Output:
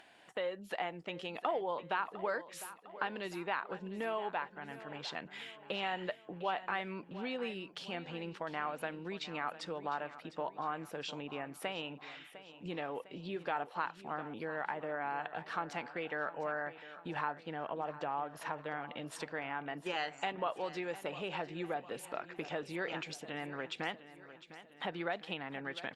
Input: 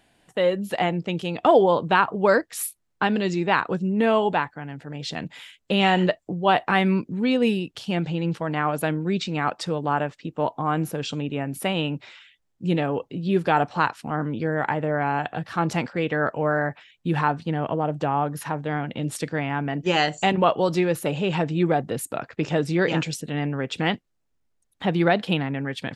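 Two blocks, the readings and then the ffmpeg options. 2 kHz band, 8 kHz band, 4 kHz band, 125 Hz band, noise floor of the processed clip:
-12.5 dB, -17.0 dB, -13.5 dB, -23.5 dB, -58 dBFS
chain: -af "highpass=f=360:p=1,acompressor=threshold=-34dB:ratio=2.5,lowshelf=f=480:g=-10.5,aecho=1:1:704|1408|2112|2816|3520:0.178|0.0907|0.0463|0.0236|0.012,acompressor=mode=upward:threshold=-50dB:ratio=2.5,aemphasis=mode=reproduction:type=75kf" -ar 48000 -c:a libopus -b:a 64k

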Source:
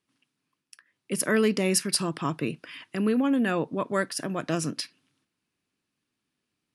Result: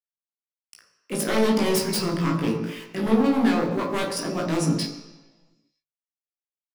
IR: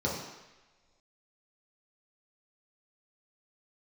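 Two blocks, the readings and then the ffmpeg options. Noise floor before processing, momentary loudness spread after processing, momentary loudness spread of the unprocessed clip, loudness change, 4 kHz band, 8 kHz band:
-83 dBFS, 9 LU, 11 LU, +3.0 dB, +2.5 dB, -1.5 dB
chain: -filter_complex "[0:a]aeval=exprs='val(0)*gte(abs(val(0)),0.00531)':c=same,bandreject=f=50:t=h:w=6,bandreject=f=100:t=h:w=6,bandreject=f=150:t=h:w=6,aeval=exprs='0.0841*(abs(mod(val(0)/0.0841+3,4)-2)-1)':c=same,asplit=2[a][b];[b]adelay=18,volume=-3dB[c];[a][c]amix=inputs=2:normalize=0,asplit=2[d][e];[1:a]atrim=start_sample=2205,adelay=30[f];[e][f]afir=irnorm=-1:irlink=0,volume=-10dB[g];[d][g]amix=inputs=2:normalize=0"

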